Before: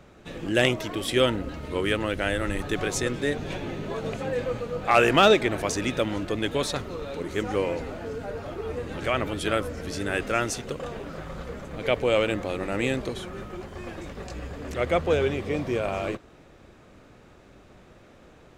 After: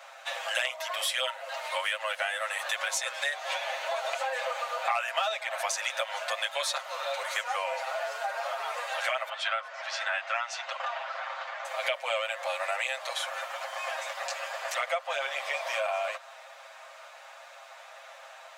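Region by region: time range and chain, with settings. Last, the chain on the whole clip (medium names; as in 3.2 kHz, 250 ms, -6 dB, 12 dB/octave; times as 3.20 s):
9.29–11.65 s: high-pass 660 Hz 24 dB/octave + distance through air 170 m
whole clip: steep high-pass 590 Hz 72 dB/octave; comb 7.5 ms, depth 99%; compression 6:1, threshold -35 dBFS; trim +7 dB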